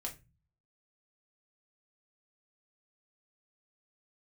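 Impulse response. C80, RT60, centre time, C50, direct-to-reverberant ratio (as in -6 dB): 21.0 dB, 0.25 s, 13 ms, 14.5 dB, -0.5 dB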